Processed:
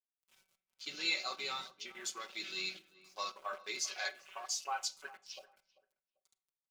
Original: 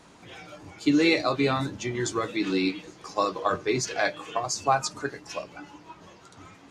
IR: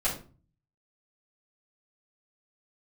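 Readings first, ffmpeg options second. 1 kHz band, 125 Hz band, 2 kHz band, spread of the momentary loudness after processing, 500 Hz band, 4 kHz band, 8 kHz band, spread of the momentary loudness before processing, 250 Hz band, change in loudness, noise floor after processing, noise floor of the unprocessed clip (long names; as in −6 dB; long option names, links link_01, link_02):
−14.5 dB, below −30 dB, −10.5 dB, 16 LU, −22.5 dB, −5.0 dB, −6.5 dB, 21 LU, −30.5 dB, −12.0 dB, below −85 dBFS, −53 dBFS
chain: -filter_complex "[0:a]aderivative,flanger=delay=4.9:depth=1.9:regen=81:speed=0.71:shape=triangular,acrusher=bits=8:mix=0:aa=0.000001,bandreject=frequency=190.7:width_type=h:width=4,bandreject=frequency=381.4:width_type=h:width=4,bandreject=frequency=572.1:width_type=h:width=4,bandreject=frequency=762.8:width_type=h:width=4,bandreject=frequency=953.5:width_type=h:width=4,bandreject=frequency=1144.2:width_type=h:width=4,bandreject=frequency=1334.9:width_type=h:width=4,bandreject=frequency=1525.6:width_type=h:width=4,bandreject=frequency=1716.3:width_type=h:width=4,bandreject=frequency=1907:width_type=h:width=4,bandreject=frequency=2097.7:width_type=h:width=4,bandreject=frequency=2288.4:width_type=h:width=4,bandreject=frequency=2479.1:width_type=h:width=4,bandreject=frequency=2669.8:width_type=h:width=4,bandreject=frequency=2860.5:width_type=h:width=4,bandreject=frequency=3051.2:width_type=h:width=4,bandreject=frequency=3241.9:width_type=h:width=4,bandreject=frequency=3432.6:width_type=h:width=4,bandreject=frequency=3623.3:width_type=h:width=4,asoftclip=type=tanh:threshold=-31dB,acrossover=split=6300[link_01][link_02];[link_02]acompressor=threshold=-59dB:ratio=4:attack=1:release=60[link_03];[link_01][link_03]amix=inputs=2:normalize=0,afwtdn=0.002,equalizer=frequency=320:width_type=o:width=0.51:gain=-3.5,bandreject=frequency=1800:width=7.6,aecho=1:1:5.3:0.74,asplit=2[link_04][link_05];[link_05]adelay=391,lowpass=frequency=1300:poles=1,volume=-17dB,asplit=2[link_06][link_07];[link_07]adelay=391,lowpass=frequency=1300:poles=1,volume=0.22[link_08];[link_04][link_06][link_08]amix=inputs=3:normalize=0,asplit=2[link_09][link_10];[1:a]atrim=start_sample=2205,adelay=33[link_11];[link_10][link_11]afir=irnorm=-1:irlink=0,volume=-25dB[link_12];[link_09][link_12]amix=inputs=2:normalize=0,volume=5dB"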